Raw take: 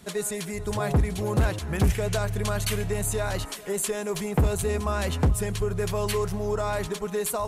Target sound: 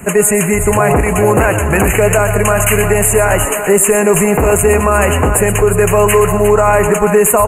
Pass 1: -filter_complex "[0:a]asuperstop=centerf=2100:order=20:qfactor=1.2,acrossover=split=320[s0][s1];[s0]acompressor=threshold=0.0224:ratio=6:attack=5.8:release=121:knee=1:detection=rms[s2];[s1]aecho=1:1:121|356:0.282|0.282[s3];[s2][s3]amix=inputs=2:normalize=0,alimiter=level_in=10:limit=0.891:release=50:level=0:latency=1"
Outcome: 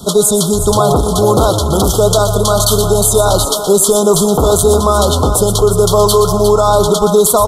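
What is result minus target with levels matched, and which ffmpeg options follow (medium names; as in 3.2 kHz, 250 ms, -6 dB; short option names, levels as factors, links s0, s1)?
2 kHz band -15.5 dB
-filter_complex "[0:a]asuperstop=centerf=4400:order=20:qfactor=1.2,acrossover=split=320[s0][s1];[s0]acompressor=threshold=0.0224:ratio=6:attack=5.8:release=121:knee=1:detection=rms[s2];[s1]aecho=1:1:121|356:0.282|0.282[s3];[s2][s3]amix=inputs=2:normalize=0,alimiter=level_in=10:limit=0.891:release=50:level=0:latency=1"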